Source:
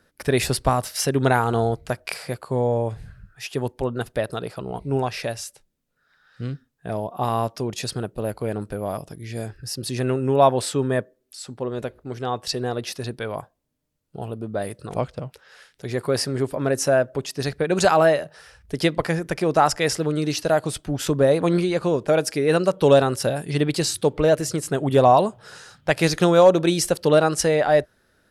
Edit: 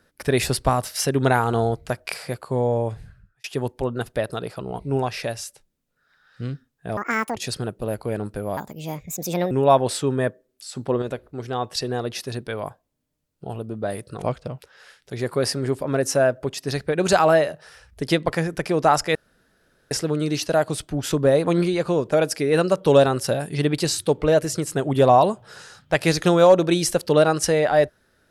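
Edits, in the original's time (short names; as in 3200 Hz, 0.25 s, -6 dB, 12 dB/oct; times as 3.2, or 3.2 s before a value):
2.91–3.44 fade out
6.97–7.72 speed 193%
8.93–10.23 speed 138%
11.47–11.74 gain +5.5 dB
19.87 insert room tone 0.76 s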